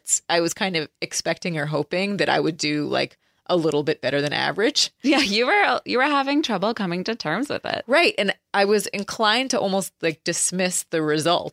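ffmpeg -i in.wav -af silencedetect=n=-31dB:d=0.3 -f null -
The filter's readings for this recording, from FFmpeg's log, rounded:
silence_start: 3.06
silence_end: 3.49 | silence_duration: 0.43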